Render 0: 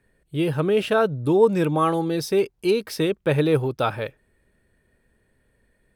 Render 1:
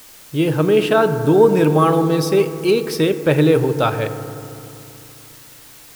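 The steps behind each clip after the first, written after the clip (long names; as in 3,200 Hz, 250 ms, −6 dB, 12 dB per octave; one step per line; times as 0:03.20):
bit-depth reduction 8 bits, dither triangular
on a send at −9 dB: convolution reverb RT60 2.7 s, pre-delay 3 ms
on the sum: level +5 dB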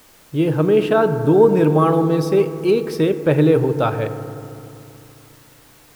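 high-shelf EQ 2,000 Hz −9 dB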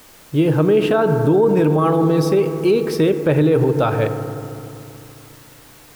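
brickwall limiter −11.5 dBFS, peak gain reduction 9 dB
level +4 dB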